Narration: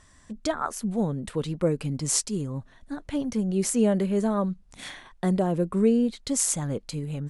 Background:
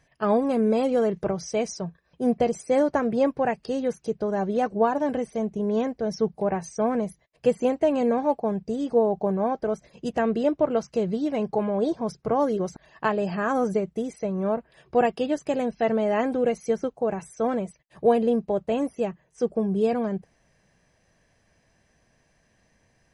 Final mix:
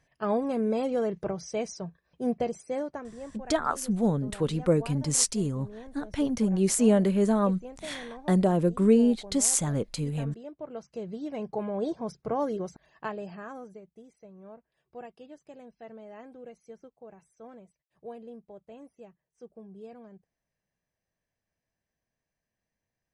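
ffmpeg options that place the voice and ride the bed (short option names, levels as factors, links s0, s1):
-filter_complex "[0:a]adelay=3050,volume=1.12[s0];[1:a]volume=2.66,afade=t=out:st=2.3:d=0.85:silence=0.188365,afade=t=in:st=10.53:d=1.26:silence=0.199526,afade=t=out:st=12.51:d=1.19:silence=0.149624[s1];[s0][s1]amix=inputs=2:normalize=0"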